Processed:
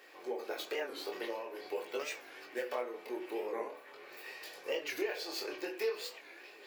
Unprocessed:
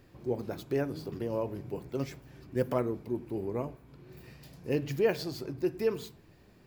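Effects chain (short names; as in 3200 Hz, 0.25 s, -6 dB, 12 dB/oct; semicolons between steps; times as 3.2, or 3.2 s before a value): HPF 470 Hz 24 dB/oct; bell 2300 Hz +5.5 dB 0.86 oct; compressor 10:1, threshold -40 dBFS, peak gain reduction 16.5 dB; chorus 0.46 Hz, delay 19.5 ms, depth 7.8 ms; delay with a stepping band-pass 0.642 s, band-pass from 3400 Hz, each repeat -0.7 oct, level -10.5 dB; on a send at -2 dB: reverb RT60 0.45 s, pre-delay 3 ms; on the sum: record warp 45 rpm, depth 160 cents; gain +8.5 dB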